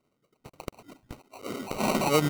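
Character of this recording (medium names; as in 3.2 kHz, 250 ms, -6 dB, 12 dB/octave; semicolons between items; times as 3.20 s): phasing stages 12, 2.8 Hz, lowest notch 500–3800 Hz; aliases and images of a low sample rate 1.7 kHz, jitter 0%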